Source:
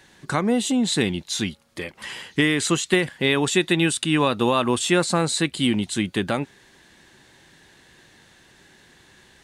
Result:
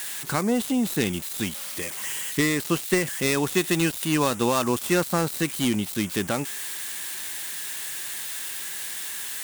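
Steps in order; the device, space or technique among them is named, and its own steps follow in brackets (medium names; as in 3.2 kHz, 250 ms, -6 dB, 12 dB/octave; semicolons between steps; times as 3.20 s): budget class-D amplifier (dead-time distortion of 0.11 ms; zero-crossing glitches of -16 dBFS); trim -2.5 dB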